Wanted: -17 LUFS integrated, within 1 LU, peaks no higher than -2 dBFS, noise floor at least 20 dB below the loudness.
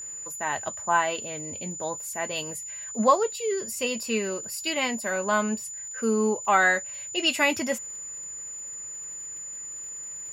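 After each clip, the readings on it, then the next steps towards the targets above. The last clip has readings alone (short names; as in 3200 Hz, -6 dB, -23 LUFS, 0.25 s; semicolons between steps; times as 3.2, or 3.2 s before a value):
ticks 50/s; steady tone 7000 Hz; tone level -35 dBFS; loudness -27.0 LUFS; peak -7.5 dBFS; loudness target -17.0 LUFS
-> de-click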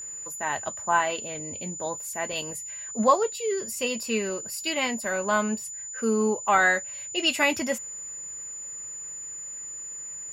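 ticks 0.097/s; steady tone 7000 Hz; tone level -35 dBFS
-> notch 7000 Hz, Q 30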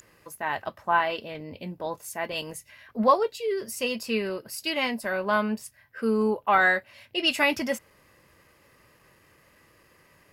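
steady tone none; loudness -26.5 LUFS; peak -7.0 dBFS; loudness target -17.0 LUFS
-> gain +9.5 dB; limiter -2 dBFS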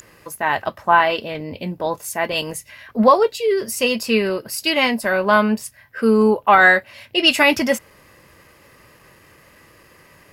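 loudness -17.5 LUFS; peak -2.0 dBFS; noise floor -51 dBFS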